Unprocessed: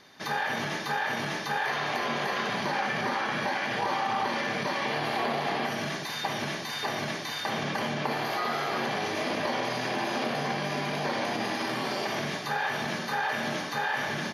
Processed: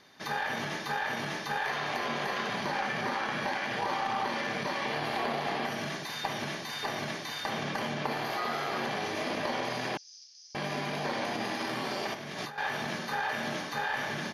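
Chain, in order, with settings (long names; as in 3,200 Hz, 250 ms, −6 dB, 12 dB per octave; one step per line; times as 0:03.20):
0:12.14–0:12.58: compressor whose output falls as the input rises −37 dBFS, ratio −1
harmonic generator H 2 −22 dB, 3 −18 dB, 5 −39 dB, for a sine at −15 dBFS
0:09.97–0:10.55: flat-topped band-pass 5,600 Hz, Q 4.5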